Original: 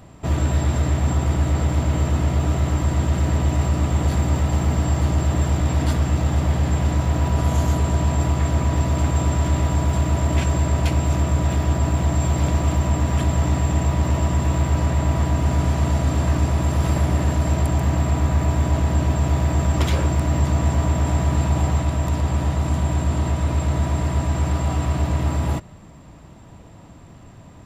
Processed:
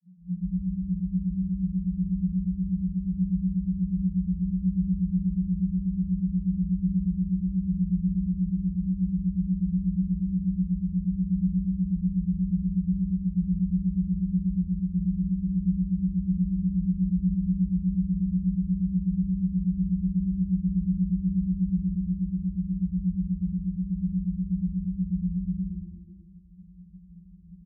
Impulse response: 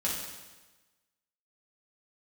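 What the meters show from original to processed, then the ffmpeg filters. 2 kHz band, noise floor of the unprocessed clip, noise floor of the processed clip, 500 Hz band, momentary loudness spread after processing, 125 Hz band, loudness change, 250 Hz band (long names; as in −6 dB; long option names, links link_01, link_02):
below −40 dB, −44 dBFS, −48 dBFS, below −30 dB, 3 LU, −9.5 dB, −6.5 dB, +1.5 dB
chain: -filter_complex "[0:a]asuperpass=centerf=180:order=12:qfactor=6.5,asplit=5[link_01][link_02][link_03][link_04][link_05];[link_02]adelay=148,afreqshift=-130,volume=-8dB[link_06];[link_03]adelay=296,afreqshift=-260,volume=-16.9dB[link_07];[link_04]adelay=444,afreqshift=-390,volume=-25.7dB[link_08];[link_05]adelay=592,afreqshift=-520,volume=-34.6dB[link_09];[link_01][link_06][link_07][link_08][link_09]amix=inputs=5:normalize=0,asplit=2[link_10][link_11];[1:a]atrim=start_sample=2205,lowshelf=frequency=210:gain=11,adelay=88[link_12];[link_11][link_12]afir=irnorm=-1:irlink=0,volume=-26.5dB[link_13];[link_10][link_13]amix=inputs=2:normalize=0,volume=5dB"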